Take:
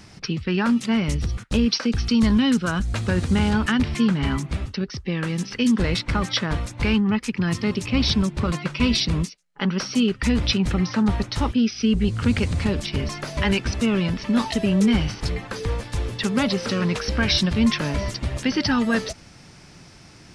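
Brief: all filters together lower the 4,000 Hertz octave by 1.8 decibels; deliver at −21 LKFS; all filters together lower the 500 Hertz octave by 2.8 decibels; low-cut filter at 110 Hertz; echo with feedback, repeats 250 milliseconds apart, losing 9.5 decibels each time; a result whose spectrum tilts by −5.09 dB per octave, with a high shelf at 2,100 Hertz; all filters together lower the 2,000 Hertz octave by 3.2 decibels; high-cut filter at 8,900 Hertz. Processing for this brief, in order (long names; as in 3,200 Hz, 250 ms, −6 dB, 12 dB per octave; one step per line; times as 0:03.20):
high-pass filter 110 Hz
low-pass filter 8,900 Hz
parametric band 500 Hz −3.5 dB
parametric band 2,000 Hz −5.5 dB
high-shelf EQ 2,100 Hz +5 dB
parametric band 4,000 Hz −5.5 dB
repeating echo 250 ms, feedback 33%, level −9.5 dB
level +2.5 dB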